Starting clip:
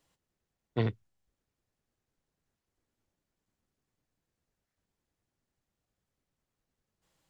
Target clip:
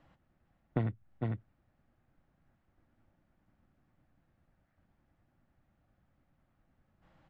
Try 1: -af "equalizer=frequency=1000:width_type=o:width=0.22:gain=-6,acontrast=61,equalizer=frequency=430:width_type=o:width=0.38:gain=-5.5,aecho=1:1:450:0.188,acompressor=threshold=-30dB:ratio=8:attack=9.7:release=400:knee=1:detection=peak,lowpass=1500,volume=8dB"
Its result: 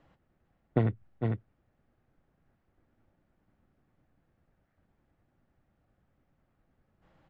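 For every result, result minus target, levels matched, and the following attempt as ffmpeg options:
downward compressor: peak gain reduction −5.5 dB; 500 Hz band +2.5 dB
-af "equalizer=frequency=1000:width_type=o:width=0.22:gain=-6,acontrast=61,equalizer=frequency=430:width_type=o:width=0.38:gain=-5.5,aecho=1:1:450:0.188,acompressor=threshold=-37dB:ratio=8:attack=9.7:release=400:knee=1:detection=peak,lowpass=1500,volume=8dB"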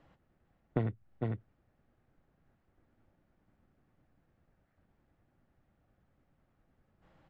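500 Hz band +2.5 dB
-af "equalizer=frequency=1000:width_type=o:width=0.22:gain=-6,acontrast=61,equalizer=frequency=430:width_type=o:width=0.38:gain=-13,aecho=1:1:450:0.188,acompressor=threshold=-37dB:ratio=8:attack=9.7:release=400:knee=1:detection=peak,lowpass=1500,volume=8dB"

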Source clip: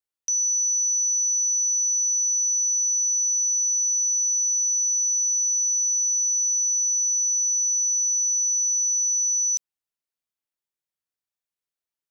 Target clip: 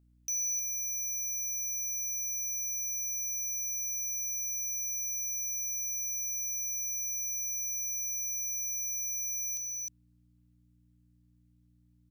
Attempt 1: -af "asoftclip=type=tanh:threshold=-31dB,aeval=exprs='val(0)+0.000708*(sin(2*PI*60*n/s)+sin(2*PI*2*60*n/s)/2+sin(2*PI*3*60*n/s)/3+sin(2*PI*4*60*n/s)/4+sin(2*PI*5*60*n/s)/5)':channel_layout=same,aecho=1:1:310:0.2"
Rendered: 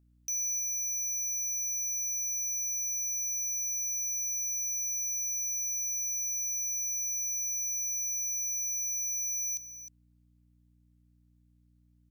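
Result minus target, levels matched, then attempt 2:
echo-to-direct −8.5 dB
-af "asoftclip=type=tanh:threshold=-31dB,aeval=exprs='val(0)+0.000708*(sin(2*PI*60*n/s)+sin(2*PI*2*60*n/s)/2+sin(2*PI*3*60*n/s)/3+sin(2*PI*4*60*n/s)/4+sin(2*PI*5*60*n/s)/5)':channel_layout=same,aecho=1:1:310:0.531"

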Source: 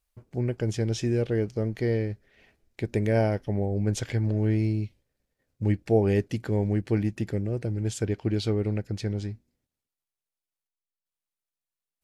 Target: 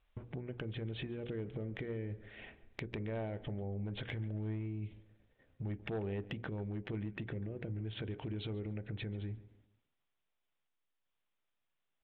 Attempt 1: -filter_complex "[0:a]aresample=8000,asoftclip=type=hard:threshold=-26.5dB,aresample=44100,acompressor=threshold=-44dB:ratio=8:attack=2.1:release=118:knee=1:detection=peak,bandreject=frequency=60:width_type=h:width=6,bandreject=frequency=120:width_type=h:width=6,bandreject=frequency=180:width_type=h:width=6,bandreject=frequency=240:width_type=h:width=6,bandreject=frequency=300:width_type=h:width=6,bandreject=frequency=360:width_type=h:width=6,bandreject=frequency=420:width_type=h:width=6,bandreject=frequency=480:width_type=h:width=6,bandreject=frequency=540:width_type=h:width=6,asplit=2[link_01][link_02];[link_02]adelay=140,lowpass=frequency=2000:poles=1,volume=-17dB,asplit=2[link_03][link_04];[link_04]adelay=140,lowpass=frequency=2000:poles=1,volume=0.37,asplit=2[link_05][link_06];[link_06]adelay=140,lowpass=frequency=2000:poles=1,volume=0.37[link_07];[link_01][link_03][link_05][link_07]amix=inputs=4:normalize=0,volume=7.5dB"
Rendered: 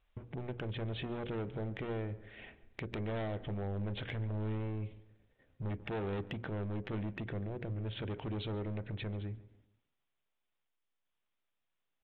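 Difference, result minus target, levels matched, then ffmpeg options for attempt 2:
hard clipping: distortion +13 dB
-filter_complex "[0:a]aresample=8000,asoftclip=type=hard:threshold=-17.5dB,aresample=44100,acompressor=threshold=-44dB:ratio=8:attack=2.1:release=118:knee=1:detection=peak,bandreject=frequency=60:width_type=h:width=6,bandreject=frequency=120:width_type=h:width=6,bandreject=frequency=180:width_type=h:width=6,bandreject=frequency=240:width_type=h:width=6,bandreject=frequency=300:width_type=h:width=6,bandreject=frequency=360:width_type=h:width=6,bandreject=frequency=420:width_type=h:width=6,bandreject=frequency=480:width_type=h:width=6,bandreject=frequency=540:width_type=h:width=6,asplit=2[link_01][link_02];[link_02]adelay=140,lowpass=frequency=2000:poles=1,volume=-17dB,asplit=2[link_03][link_04];[link_04]adelay=140,lowpass=frequency=2000:poles=1,volume=0.37,asplit=2[link_05][link_06];[link_06]adelay=140,lowpass=frequency=2000:poles=1,volume=0.37[link_07];[link_01][link_03][link_05][link_07]amix=inputs=4:normalize=0,volume=7.5dB"

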